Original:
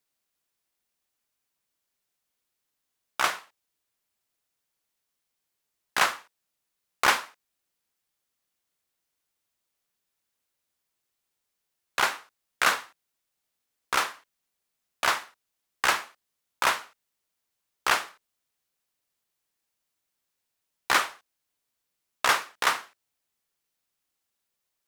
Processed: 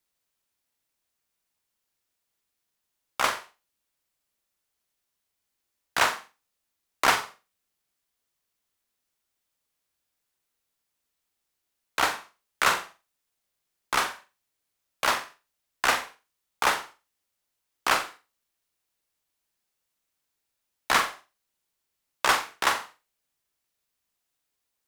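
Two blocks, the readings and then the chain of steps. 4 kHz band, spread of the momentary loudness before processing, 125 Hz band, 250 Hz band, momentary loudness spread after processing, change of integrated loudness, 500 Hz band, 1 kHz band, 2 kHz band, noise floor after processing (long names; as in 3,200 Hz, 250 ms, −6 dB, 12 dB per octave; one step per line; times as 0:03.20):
0.0 dB, 10 LU, +3.5 dB, +3.0 dB, 13 LU, +0.5 dB, +2.5 dB, +1.0 dB, −0.5 dB, −82 dBFS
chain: flutter between parallel walls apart 7.5 metres, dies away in 0.28 s
frequency shifter −89 Hz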